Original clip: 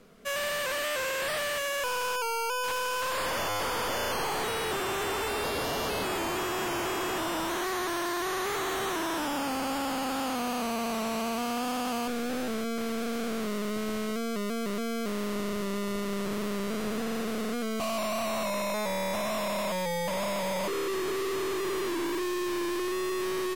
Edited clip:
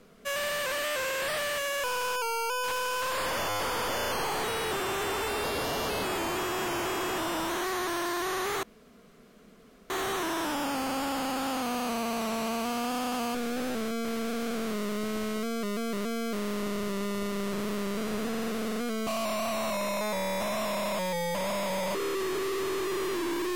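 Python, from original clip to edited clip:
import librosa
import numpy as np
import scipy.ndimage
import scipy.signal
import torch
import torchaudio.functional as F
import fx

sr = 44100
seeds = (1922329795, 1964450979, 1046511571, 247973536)

y = fx.edit(x, sr, fx.insert_room_tone(at_s=8.63, length_s=1.27), tone=tone)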